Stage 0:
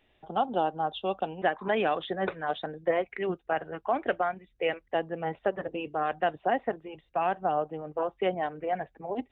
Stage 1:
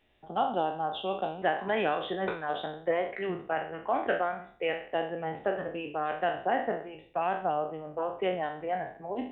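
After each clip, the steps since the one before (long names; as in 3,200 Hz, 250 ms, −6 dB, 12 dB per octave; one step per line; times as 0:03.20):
peak hold with a decay on every bin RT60 0.50 s
level −3 dB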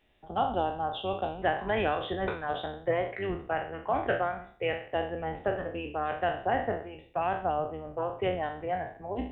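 sub-octave generator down 2 octaves, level −4 dB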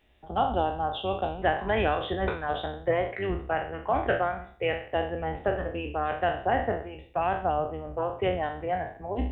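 parametric band 66 Hz +12 dB 0.34 octaves
level +2.5 dB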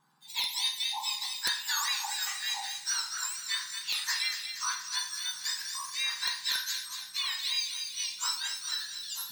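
frequency axis turned over on the octave scale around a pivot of 1,700 Hz
delay with a high-pass on its return 236 ms, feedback 59%, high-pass 2,000 Hz, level −7 dB
wrap-around overflow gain 18.5 dB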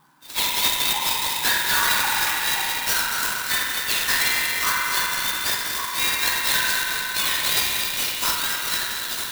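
spring reverb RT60 3.6 s, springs 43 ms, chirp 60 ms, DRR −4 dB
reversed playback
upward compression, threshold −42 dBFS
reversed playback
converter with an unsteady clock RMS 0.039 ms
level +8.5 dB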